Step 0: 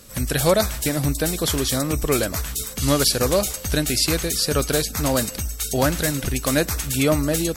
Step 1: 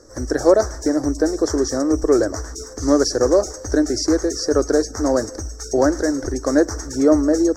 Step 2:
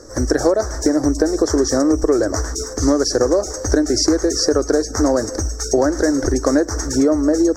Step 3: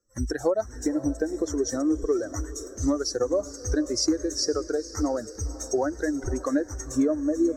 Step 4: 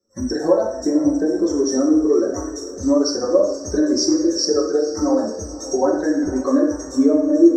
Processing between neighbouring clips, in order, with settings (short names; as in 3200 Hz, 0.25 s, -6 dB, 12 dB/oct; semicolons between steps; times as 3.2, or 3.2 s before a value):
EQ curve 110 Hz 0 dB, 160 Hz -20 dB, 310 Hz +12 dB, 950 Hz +2 dB, 1800 Hz 0 dB, 2600 Hz -30 dB, 3800 Hz -20 dB, 5700 Hz +6 dB, 11000 Hz -24 dB; gain -2 dB
compressor 10:1, threshold -19 dBFS, peak gain reduction 12 dB; gain +7.5 dB
per-bin expansion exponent 2; diffused feedback echo 0.506 s, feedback 44%, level -15 dB; gain -5 dB
reverb RT60 0.70 s, pre-delay 3 ms, DRR -8.5 dB; gain -8 dB